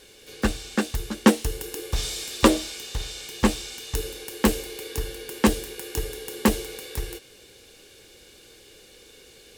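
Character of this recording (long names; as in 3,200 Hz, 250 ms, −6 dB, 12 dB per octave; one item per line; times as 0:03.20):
background noise floor −51 dBFS
spectral slope −4.5 dB per octave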